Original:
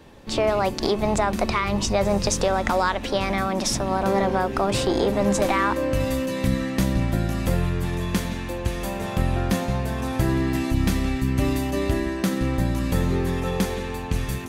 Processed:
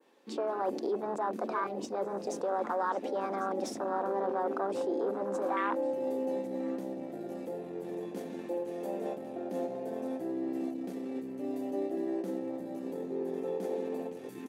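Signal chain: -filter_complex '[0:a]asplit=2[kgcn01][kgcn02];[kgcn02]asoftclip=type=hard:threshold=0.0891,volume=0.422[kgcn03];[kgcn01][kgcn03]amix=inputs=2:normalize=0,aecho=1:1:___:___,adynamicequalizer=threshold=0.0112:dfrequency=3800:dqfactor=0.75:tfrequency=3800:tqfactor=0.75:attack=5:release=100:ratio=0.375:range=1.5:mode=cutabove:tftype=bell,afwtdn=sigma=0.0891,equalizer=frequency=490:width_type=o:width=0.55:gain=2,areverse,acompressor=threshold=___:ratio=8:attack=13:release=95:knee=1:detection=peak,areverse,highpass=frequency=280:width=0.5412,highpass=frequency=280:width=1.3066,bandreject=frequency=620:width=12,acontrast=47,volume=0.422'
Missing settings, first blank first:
1099, 0.211, 0.0447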